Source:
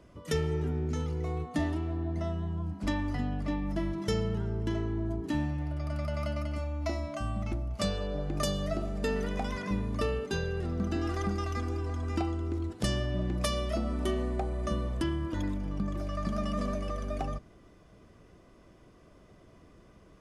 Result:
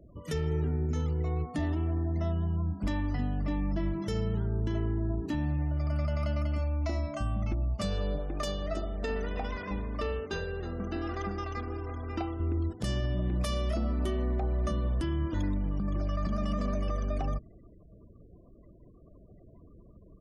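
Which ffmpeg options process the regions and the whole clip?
ffmpeg -i in.wav -filter_complex "[0:a]asettb=1/sr,asplit=3[link_01][link_02][link_03];[link_01]atrim=end=8.184[link_04];[link_02]atrim=start=8.18:end=12.4,asetpts=PTS-STARTPTS,afade=type=in:duration=0.004:curve=qsin,afade=type=out:start_time=4.216:duration=0.004:curve=qsin,equalizer=frequency=120:width=0.77:gain=-13,adynamicsmooth=sensitivity=8:basefreq=4100,asplit=4[link_05][link_06][link_07][link_08];[link_06]adelay=318,afreqshift=33,volume=-15dB[link_09];[link_07]adelay=636,afreqshift=66,volume=-24.9dB[link_10];[link_08]adelay=954,afreqshift=99,volume=-34.8dB[link_11];[link_05][link_09][link_10][link_11]amix=inputs=4:normalize=0,atrim=end_sample=186102[link_12];[link_03]atrim=start=12.396[link_13];[link_04][link_12]acrossfade=duration=0.004:curve1=hsin:curve2=qsin[link_14];[link_14][link_13]acrossfade=duration=0.004:curve1=qsin:curve2=hsin,afftfilt=real='re*gte(hypot(re,im),0.00282)':imag='im*gte(hypot(re,im),0.00282)':win_size=1024:overlap=0.75,lowshelf=frequency=140:gain=6,alimiter=limit=-22.5dB:level=0:latency=1:release=48" out.wav

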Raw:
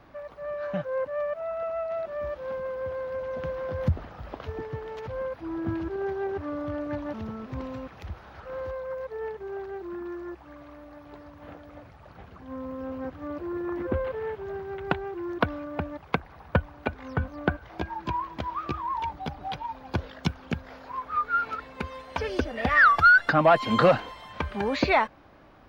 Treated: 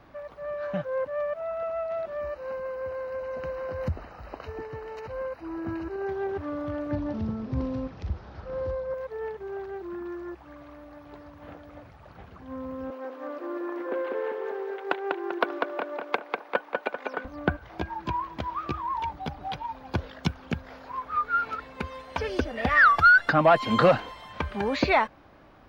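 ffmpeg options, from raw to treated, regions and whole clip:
ffmpeg -i in.wav -filter_complex "[0:a]asettb=1/sr,asplit=3[link_01][link_02][link_03];[link_01]atrim=end=2.214[link_04];[link_02]atrim=start=2.21:end=6.09,asetpts=PTS-STARTPTS,afade=type=in:duration=0.004:curve=qsin,afade=type=out:start_time=3.876:duration=0.004:curve=qsin,asuperstop=centerf=3400:order=12:qfactor=5.2,equalizer=frequency=130:width=0.68:gain=-7[link_05];[link_03]atrim=start=6.086[link_06];[link_04][link_05]acrossfade=duration=0.004:curve1=hsin:curve2=qsin[link_07];[link_07][link_06]acrossfade=duration=0.004:curve1=qsin:curve2=hsin,asettb=1/sr,asplit=3[link_08][link_09][link_10];[link_08]atrim=end=6.914[link_11];[link_09]atrim=start=6.91:end=8.94,asetpts=PTS-STARTPTS,afade=type=in:duration=0.004:curve=qsin,afade=type=out:start_time=2.026:duration=0.004:curve=qsin,lowpass=frequency=5300:width_type=q:width=2.4,tiltshelf=frequency=640:gain=6.5,asplit=2[link_12][link_13];[link_13]adelay=42,volume=-10.5dB[link_14];[link_12][link_14]amix=inputs=2:normalize=0,atrim=end_sample=89523[link_15];[link_10]atrim=start=8.936[link_16];[link_11][link_15]acrossfade=duration=0.004:curve1=hsin:curve2=qsin[link_17];[link_17][link_16]acrossfade=duration=0.004:curve1=qsin:curve2=hsin,asettb=1/sr,asplit=3[link_18][link_19][link_20];[link_18]atrim=end=12.904[link_21];[link_19]atrim=start=12.9:end=17.25,asetpts=PTS-STARTPTS,afade=type=in:duration=0.004:curve=qsin,afade=type=out:start_time=4.346:duration=0.004:curve=qsin,highpass=frequency=340:width=0.5412,highpass=frequency=340:width=1.3066,asplit=2[link_22][link_23];[link_23]adelay=196,lowpass=frequency=4300:poles=1,volume=-3dB,asplit=2[link_24][link_25];[link_25]adelay=196,lowpass=frequency=4300:poles=1,volume=0.51,asplit=2[link_26][link_27];[link_27]adelay=196,lowpass=frequency=4300:poles=1,volume=0.51,asplit=2[link_28][link_29];[link_29]adelay=196,lowpass=frequency=4300:poles=1,volume=0.51,asplit=2[link_30][link_31];[link_31]adelay=196,lowpass=frequency=4300:poles=1,volume=0.51,asplit=2[link_32][link_33];[link_33]adelay=196,lowpass=frequency=4300:poles=1,volume=0.51,asplit=2[link_34][link_35];[link_35]adelay=196,lowpass=frequency=4300:poles=1,volume=0.51[link_36];[link_22][link_24][link_26][link_28][link_30][link_32][link_34][link_36]amix=inputs=8:normalize=0,atrim=end_sample=191835[link_37];[link_20]atrim=start=17.246[link_38];[link_21][link_37]acrossfade=duration=0.004:curve1=hsin:curve2=qsin[link_39];[link_39][link_38]acrossfade=duration=0.004:curve1=qsin:curve2=hsin" out.wav

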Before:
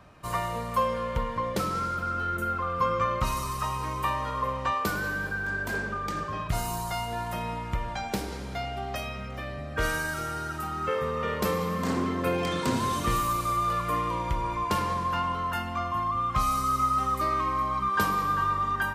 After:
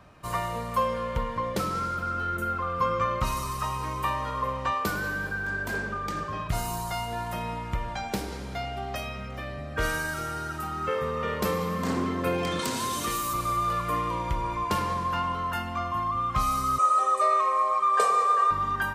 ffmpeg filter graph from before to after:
ffmpeg -i in.wav -filter_complex "[0:a]asettb=1/sr,asplit=3[link_01][link_02][link_03];[link_01]atrim=end=12.594[link_04];[link_02]atrim=start=12.59:end=13.34,asetpts=PTS-STARTPTS,afade=type=in:duration=0.004:curve=qsin,afade=type=out:start_time=0.746:duration=0.004:curve=qsin,highshelf=frequency=3100:gain=10,acrossover=split=220|460[link_05][link_06][link_07];[link_05]acompressor=threshold=-42dB:ratio=4[link_08];[link_06]acompressor=threshold=-36dB:ratio=4[link_09];[link_07]acompressor=threshold=-28dB:ratio=4[link_10];[link_08][link_09][link_10]amix=inputs=3:normalize=0,volume=20dB,asoftclip=hard,volume=-20dB[link_11];[link_03]atrim=start=13.336[link_12];[link_04][link_11]acrossfade=duration=0.004:curve1=hsin:curve2=qsin[link_13];[link_13][link_12]acrossfade=duration=0.004:curve1=qsin:curve2=hsin,asettb=1/sr,asplit=3[link_14][link_15][link_16];[link_14]atrim=end=16.784[link_17];[link_15]atrim=start=16.78:end=18.51,asetpts=PTS-STARTPTS,afade=type=in:duration=0.004:curve=qsin,afade=type=out:start_time=1.726:duration=0.004:curve=qsin,highpass=frequency=370:width=0.5412,highpass=frequency=370:width=1.3066,equalizer=frequency=450:width_type=q:width=4:gain=8,equalizer=frequency=720:width_type=q:width=4:gain=3,equalizer=frequency=1500:width_type=q:width=4:gain=-5,equalizer=frequency=3100:width_type=q:width=4:gain=-6,equalizer=frequency=4900:width_type=q:width=4:gain=-6,equalizer=frequency=8400:width_type=q:width=4:gain=8,lowpass=frequency=9200:width=0.5412,lowpass=frequency=9200:width=1.3066,aecho=1:1:1.7:0.95,atrim=end_sample=76293[link_18];[link_16]atrim=start=18.506[link_19];[link_17][link_18]acrossfade=duration=0.004:curve1=hsin:curve2=qsin[link_20];[link_20][link_19]acrossfade=duration=0.004:curve1=qsin:curve2=hsin" out.wav

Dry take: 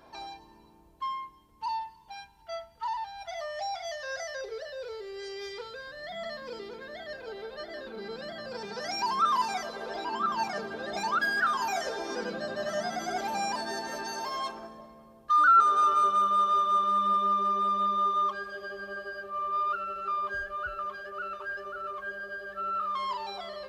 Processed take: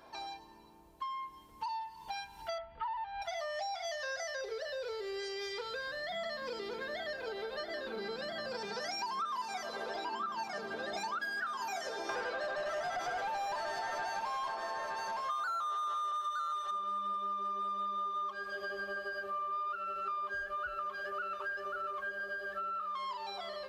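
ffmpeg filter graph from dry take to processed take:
ffmpeg -i in.wav -filter_complex "[0:a]asettb=1/sr,asplit=3[link_01][link_02][link_03];[link_01]atrim=end=2.584[link_04];[link_02]atrim=start=2.58:end=3.22,asetpts=PTS-STARTPTS,afade=type=in:duration=0.004:curve=qsin,afade=type=out:start_time=0.636:duration=0.004:curve=qsin,lowpass=frequency=3000:width=0.5412,lowpass=frequency=3000:width=1.3066,lowshelf=frequency=61:gain=11[link_05];[link_03]atrim=start=3.216[link_06];[link_04][link_05]acrossfade=duration=0.004:curve1=hsin:curve2=qsin[link_07];[link_07][link_06]acrossfade=duration=0.004:curve1=qsin:curve2=hsin,asettb=1/sr,asplit=3[link_08][link_09][link_10];[link_08]atrim=end=12.094[link_11];[link_09]atrim=start=12.09:end=16.71,asetpts=PTS-STARTPTS,afade=type=in:duration=0.004:curve=qsin,afade=type=out:start_time=4.616:duration=0.004:curve=qsin,highpass=550,asplit=2[link_12][link_13];[link_13]highpass=frequency=720:poles=1,volume=27dB,asoftclip=type=tanh:threshold=-13dB[link_14];[link_12][link_14]amix=inputs=2:normalize=0,lowpass=frequency=1000:poles=1,volume=-6dB,aecho=1:1:916:0.501,atrim=end_sample=203742[link_15];[link_10]atrim=start=16.706[link_16];[link_11][link_15]acrossfade=duration=0.004:curve1=hsin:curve2=qsin[link_17];[link_17][link_16]acrossfade=duration=0.004:curve1=qsin:curve2=hsin,dynaudnorm=framelen=400:gausssize=9:maxgain=13.5dB,lowshelf=frequency=340:gain=-6.5,acompressor=threshold=-38dB:ratio=6" out.wav

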